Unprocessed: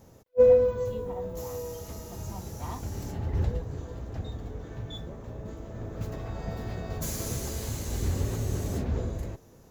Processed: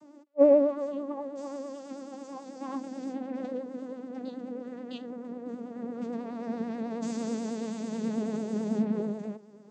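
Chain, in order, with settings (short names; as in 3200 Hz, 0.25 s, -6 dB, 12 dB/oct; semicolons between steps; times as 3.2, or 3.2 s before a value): vocoder on a gliding note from D4, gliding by -6 st; vibrato 9.2 Hz 65 cents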